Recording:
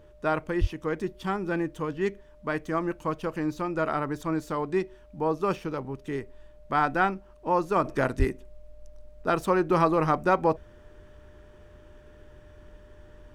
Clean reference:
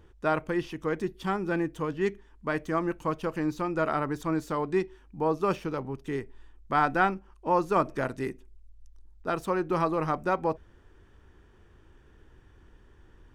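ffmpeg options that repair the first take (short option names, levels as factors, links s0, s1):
-filter_complex "[0:a]bandreject=f=600:w=30,asplit=3[s0][s1][s2];[s0]afade=t=out:st=0.6:d=0.02[s3];[s1]highpass=f=140:w=0.5412,highpass=f=140:w=1.3066,afade=t=in:st=0.6:d=0.02,afade=t=out:st=0.72:d=0.02[s4];[s2]afade=t=in:st=0.72:d=0.02[s5];[s3][s4][s5]amix=inputs=3:normalize=0,asplit=3[s6][s7][s8];[s6]afade=t=out:st=8.18:d=0.02[s9];[s7]highpass=f=140:w=0.5412,highpass=f=140:w=1.3066,afade=t=in:st=8.18:d=0.02,afade=t=out:st=8.3:d=0.02[s10];[s8]afade=t=in:st=8.3:d=0.02[s11];[s9][s10][s11]amix=inputs=3:normalize=0,agate=range=0.0891:threshold=0.00631,asetnsamples=n=441:p=0,asendcmd='7.84 volume volume -4.5dB',volume=1"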